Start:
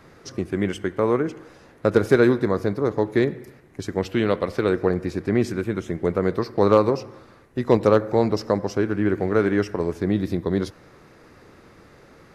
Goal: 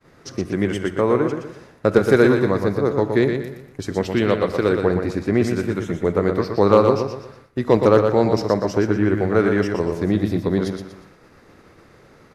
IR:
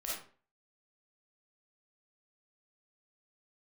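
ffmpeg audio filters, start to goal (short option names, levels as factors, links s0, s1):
-filter_complex "[0:a]aecho=1:1:120|240|360|480:0.501|0.18|0.065|0.0234,agate=range=0.0224:threshold=0.00631:ratio=3:detection=peak,asplit=2[s0][s1];[1:a]atrim=start_sample=2205[s2];[s1][s2]afir=irnorm=-1:irlink=0,volume=0.141[s3];[s0][s3]amix=inputs=2:normalize=0,volume=1.19"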